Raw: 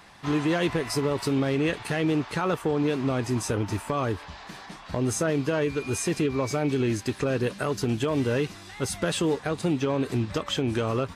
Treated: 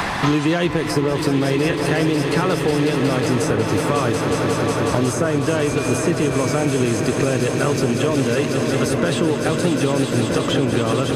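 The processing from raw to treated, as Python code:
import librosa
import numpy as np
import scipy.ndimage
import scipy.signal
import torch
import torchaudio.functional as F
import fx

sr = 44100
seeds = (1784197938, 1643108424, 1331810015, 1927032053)

y = fx.echo_swell(x, sr, ms=182, loudest=5, wet_db=-11.0)
y = fx.band_squash(y, sr, depth_pct=100)
y = y * 10.0 ** (5.0 / 20.0)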